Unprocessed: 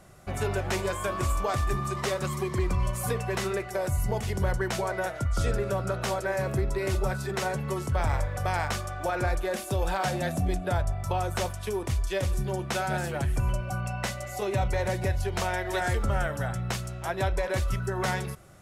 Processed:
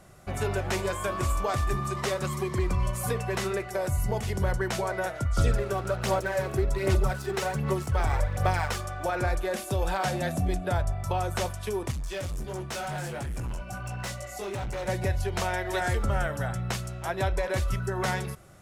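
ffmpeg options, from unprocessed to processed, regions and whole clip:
-filter_complex "[0:a]asettb=1/sr,asplit=3[a][b][c];[a]atrim=end=5.384[d];[b]atrim=start=5.38:end=8.8,asetpts=PTS-STARTPTS,afade=t=in:d=0.004:c=qsin,afade=t=out:st=3.416:d=0.004:c=qsin,aphaser=in_gain=1:out_gain=1:delay=2.7:decay=0.45:speed=1.3:type=sinusoidal,aeval=exprs='sgn(val(0))*max(abs(val(0))-0.00708,0)':c=same[e];[c]atrim=start=8.796[f];[d][e]acrossfade=d=0.004:c1=hsin:c2=qsin[g];[g][f]acrossfade=d=0.004:c1=qsin:c2=hsin,asettb=1/sr,asplit=3[h][i][j];[h]atrim=end=11.914[k];[i]atrim=start=11.91:end=14.88,asetpts=PTS-STARTPTS,afade=t=in:d=0.004:c=qsin,afade=t=out:st=2.966:d=0.004:c=qsin,equalizer=f=7.1k:w=0.74:g=3.5,flanger=delay=16:depth=4.7:speed=1.4,volume=30dB,asoftclip=hard,volume=-30dB[l];[j]atrim=start=14.876[m];[k][l]acrossfade=d=0.004:c1=hsin:c2=qsin[n];[n][m]acrossfade=d=0.004:c1=qsin:c2=hsin"

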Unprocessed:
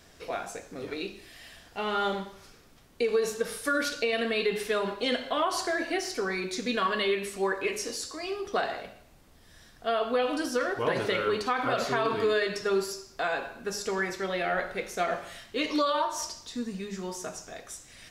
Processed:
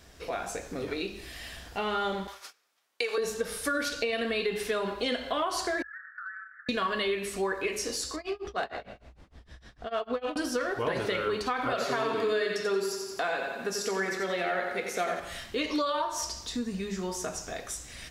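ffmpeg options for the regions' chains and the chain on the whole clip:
-filter_complex "[0:a]asettb=1/sr,asplit=3[a][b][c];[a]atrim=end=2.274[d];[b]atrim=start=2.27:end=3.18,asetpts=PTS-STARTPTS,afade=t=in:d=0.004:c=qsin,afade=t=out:st=0.906:d=0.004:c=qsin,highpass=810,acontrast=34,agate=range=-23dB:threshold=-50dB:ratio=16:release=100:detection=peak[e];[c]atrim=start=3.176[f];[d][e]acrossfade=d=0.004:c1=hsin:c2=qsin[g];[g][f]acrossfade=d=0.004:c1=qsin:c2=hsin,asettb=1/sr,asplit=3[h][i][j];[h]atrim=end=5.824[k];[i]atrim=start=5.82:end=6.69,asetpts=PTS-STARTPTS,afade=t=in:d=0.004:c=qsin,afade=t=out:st=0.866:d=0.004:c=qsin,asuperpass=centerf=1500:order=12:qfactor=2.6,acompressor=threshold=-42dB:ratio=6:attack=3.2:release=140:knee=1:detection=peak[l];[j]atrim=start=6.686[m];[k][l]acrossfade=d=0.004:c1=hsin:c2=qsin[n];[n][m]acrossfade=d=0.004:c1=qsin:c2=hsin,asettb=1/sr,asplit=3[o][p][q];[o]atrim=end=8.164[r];[p]atrim=start=8.16:end=10.36,asetpts=PTS-STARTPTS,afade=t=in:d=0.004:c=qsin,afade=t=out:st=2.196:d=0.004:c=qsin,tremolo=f=6.6:d=0.97,adynamicsmooth=sensitivity=8:basefreq=4.9k[s];[q]atrim=start=10.356[t];[r][s]acrossfade=d=0.004:c1=hsin:c2=qsin[u];[u][t]acrossfade=d=0.004:c1=qsin:c2=hsin,asettb=1/sr,asplit=3[v][w][x];[v]atrim=end=11.724[y];[w]atrim=start=11.72:end=15.2,asetpts=PTS-STARTPTS,afade=t=in:d=0.004:c=qsin,afade=t=out:st=3.476:d=0.004:c=qsin,highpass=170,aecho=1:1:89|178|267|356|445|534:0.447|0.219|0.107|0.0526|0.0258|0.0126,atrim=end_sample=153468[z];[x]atrim=start=15.196[aa];[y][z]acrossfade=d=0.004:c1=hsin:c2=qsin[ab];[ab][aa]acrossfade=d=0.004:c1=qsin:c2=hsin,dynaudnorm=f=210:g=3:m=6dB,equalizer=f=61:t=o:w=0.45:g=13,acompressor=threshold=-33dB:ratio=2"

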